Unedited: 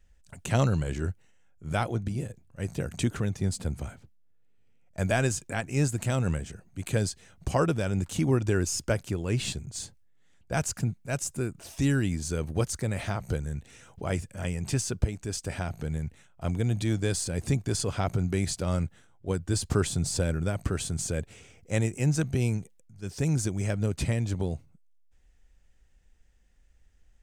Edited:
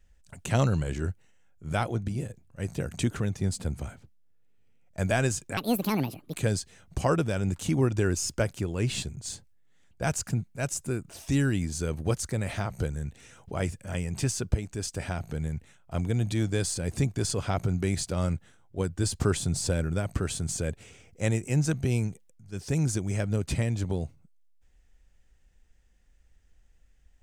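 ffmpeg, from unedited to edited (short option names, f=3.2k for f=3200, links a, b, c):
-filter_complex "[0:a]asplit=3[a][b][c];[a]atrim=end=5.574[d];[b]atrim=start=5.57:end=6.84,asetpts=PTS-STARTPTS,asetrate=72765,aresample=44100[e];[c]atrim=start=6.836[f];[d][e]acrossfade=d=0.004:c1=hsin:c2=hsin[g];[g][f]acrossfade=d=0.004:c1=hsin:c2=hsin"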